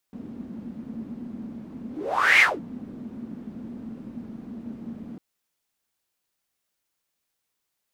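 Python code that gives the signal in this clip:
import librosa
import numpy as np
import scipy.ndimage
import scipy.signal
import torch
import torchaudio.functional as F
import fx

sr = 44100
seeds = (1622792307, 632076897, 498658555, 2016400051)

y = fx.whoosh(sr, seeds[0], length_s=5.05, peak_s=2.27, rise_s=0.54, fall_s=0.22, ends_hz=230.0, peak_hz=2200.0, q=8.4, swell_db=21.5)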